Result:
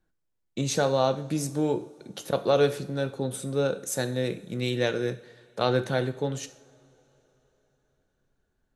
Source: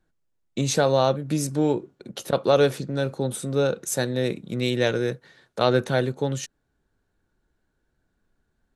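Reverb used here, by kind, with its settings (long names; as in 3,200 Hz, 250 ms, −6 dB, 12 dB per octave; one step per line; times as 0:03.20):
coupled-rooms reverb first 0.53 s, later 3.9 s, from −22 dB, DRR 9.5 dB
level −4 dB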